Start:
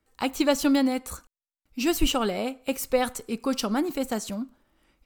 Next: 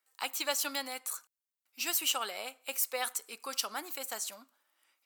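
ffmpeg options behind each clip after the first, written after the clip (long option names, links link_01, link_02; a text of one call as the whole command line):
ffmpeg -i in.wav -af "highpass=940,highshelf=frequency=7100:gain=9.5,volume=-4.5dB" out.wav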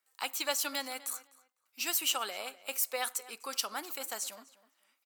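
ffmpeg -i in.wav -filter_complex "[0:a]asplit=2[link_01][link_02];[link_02]adelay=252,lowpass=frequency=3400:poles=1,volume=-17.5dB,asplit=2[link_03][link_04];[link_04]adelay=252,lowpass=frequency=3400:poles=1,volume=0.21[link_05];[link_01][link_03][link_05]amix=inputs=3:normalize=0" out.wav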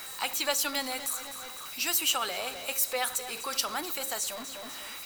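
ffmpeg -i in.wav -af "aeval=exprs='val(0)+0.5*0.0119*sgn(val(0))':channel_layout=same,aeval=exprs='val(0)+0.00355*sin(2*PI*3900*n/s)':channel_layout=same,bandreject=frequency=67.2:width_type=h:width=4,bandreject=frequency=134.4:width_type=h:width=4,bandreject=frequency=201.6:width_type=h:width=4,bandreject=frequency=268.8:width_type=h:width=4,bandreject=frequency=336:width_type=h:width=4,bandreject=frequency=403.2:width_type=h:width=4,bandreject=frequency=470.4:width_type=h:width=4,bandreject=frequency=537.6:width_type=h:width=4,volume=2.5dB" out.wav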